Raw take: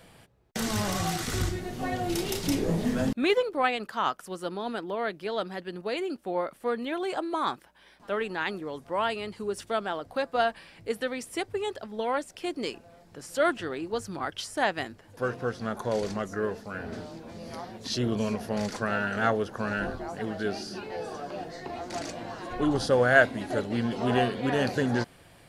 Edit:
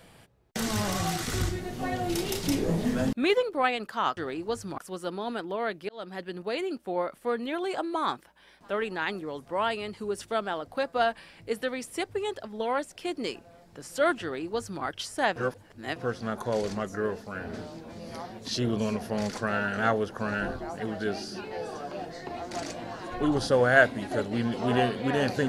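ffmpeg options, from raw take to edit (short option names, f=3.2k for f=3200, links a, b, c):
-filter_complex "[0:a]asplit=6[a][b][c][d][e][f];[a]atrim=end=4.172[g];[b]atrim=start=13.608:end=14.222[h];[c]atrim=start=4.168:end=5.28,asetpts=PTS-STARTPTS,afade=t=out:st=1.108:d=0.004:c=hsin[i];[d]atrim=start=5.28:end=14.752,asetpts=PTS-STARTPTS,afade=t=in:d=0.31[j];[e]atrim=start=14.748:end=15.352,asetpts=PTS-STARTPTS,areverse[k];[f]atrim=start=15.348[l];[g][h]acrossfade=d=0.004:c1=hsin:c2=hsin[m];[i][j]concat=n=2:v=0:a=1[n];[m][n]acrossfade=d=0.004:c1=hsin:c2=hsin[o];[o][k]acrossfade=d=0.004:c1=hsin:c2=hsin[p];[p][l]acrossfade=d=0.004:c1=hsin:c2=hsin"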